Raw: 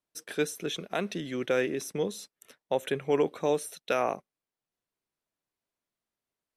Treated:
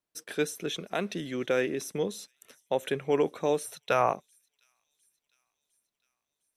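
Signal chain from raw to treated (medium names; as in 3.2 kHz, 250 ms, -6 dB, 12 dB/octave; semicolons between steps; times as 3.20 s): 3.65–4.13 s: graphic EQ 125/250/1000 Hz +11/-5/+7 dB; on a send: feedback echo behind a high-pass 706 ms, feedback 57%, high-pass 5 kHz, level -23.5 dB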